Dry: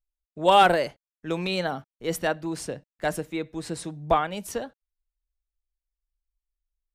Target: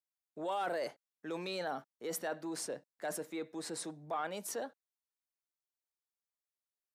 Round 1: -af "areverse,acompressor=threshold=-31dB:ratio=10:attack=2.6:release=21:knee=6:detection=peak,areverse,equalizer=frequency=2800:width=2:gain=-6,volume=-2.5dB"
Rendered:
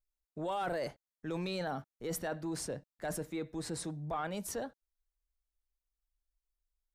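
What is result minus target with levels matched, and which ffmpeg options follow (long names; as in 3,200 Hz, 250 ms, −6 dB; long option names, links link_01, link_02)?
250 Hz band +3.0 dB
-af "areverse,acompressor=threshold=-31dB:ratio=10:attack=2.6:release=21:knee=6:detection=peak,areverse,highpass=310,equalizer=frequency=2800:width=2:gain=-6,volume=-2.5dB"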